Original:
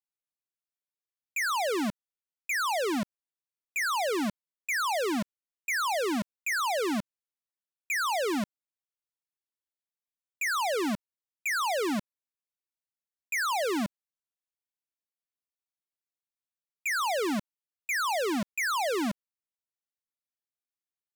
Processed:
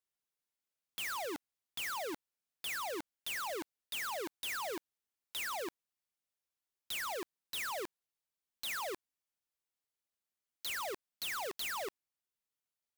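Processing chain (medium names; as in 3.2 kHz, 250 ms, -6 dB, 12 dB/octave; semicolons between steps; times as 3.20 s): gliding tape speed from 137% -> 189%; integer overflow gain 36 dB; trim +3.5 dB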